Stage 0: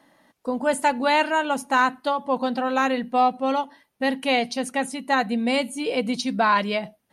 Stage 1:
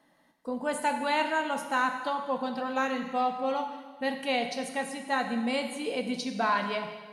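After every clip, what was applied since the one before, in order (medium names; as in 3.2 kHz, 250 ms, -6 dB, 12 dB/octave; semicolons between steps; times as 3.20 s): plate-style reverb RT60 1.4 s, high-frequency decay 1×, DRR 4.5 dB; trim -8 dB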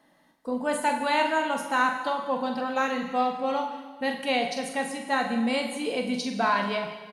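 doubling 44 ms -8 dB; trim +2.5 dB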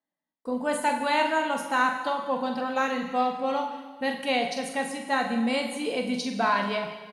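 gate -56 dBFS, range -28 dB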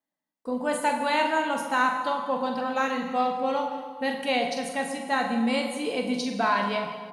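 bucket-brigade echo 117 ms, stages 1024, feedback 68%, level -12 dB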